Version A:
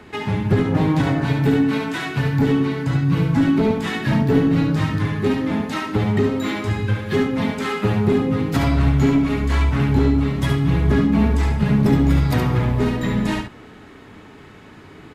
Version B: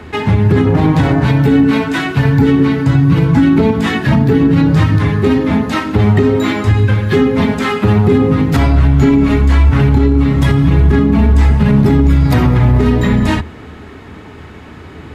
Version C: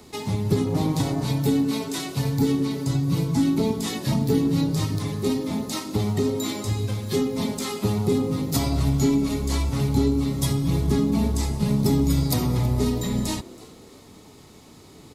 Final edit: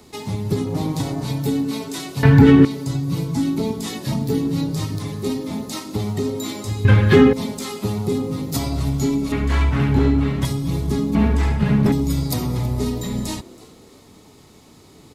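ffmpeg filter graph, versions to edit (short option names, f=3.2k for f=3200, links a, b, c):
-filter_complex "[1:a]asplit=2[a][b];[0:a]asplit=2[c][d];[2:a]asplit=5[e][f][g][h][i];[e]atrim=end=2.232[j];[a]atrim=start=2.228:end=2.652[k];[f]atrim=start=2.648:end=6.852[l];[b]atrim=start=6.848:end=7.332[m];[g]atrim=start=7.328:end=9.322[n];[c]atrim=start=9.318:end=10.452[o];[h]atrim=start=10.448:end=11.152[p];[d]atrim=start=11.148:end=11.922[q];[i]atrim=start=11.918[r];[j][k]acrossfade=d=0.004:c1=hsin:c2=hsin[s];[s][l]acrossfade=d=0.004:c1=hsin:c2=hsin[t];[t][m]acrossfade=d=0.004:c1=hsin:c2=hsin[u];[u][n]acrossfade=d=0.004:c1=hsin:c2=hsin[v];[v][o]acrossfade=d=0.004:c1=hsin:c2=hsin[w];[w][p]acrossfade=d=0.004:c1=hsin:c2=hsin[x];[x][q]acrossfade=d=0.004:c1=hsin:c2=hsin[y];[y][r]acrossfade=d=0.004:c1=hsin:c2=hsin"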